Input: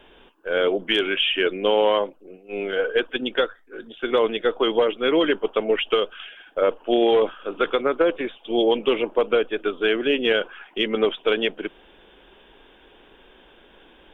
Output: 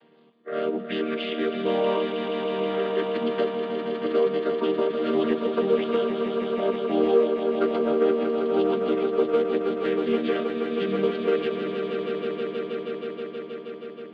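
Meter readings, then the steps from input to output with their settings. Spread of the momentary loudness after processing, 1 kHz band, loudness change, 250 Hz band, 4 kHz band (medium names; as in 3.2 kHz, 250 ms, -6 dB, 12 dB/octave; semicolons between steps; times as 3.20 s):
8 LU, -3.0 dB, -3.0 dB, +0.5 dB, no reading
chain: vocoder on a held chord major triad, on D#3; in parallel at -9.5 dB: overload inside the chain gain 16.5 dB; on the sum: echo with a slow build-up 159 ms, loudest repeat 5, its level -8 dB; trim -5.5 dB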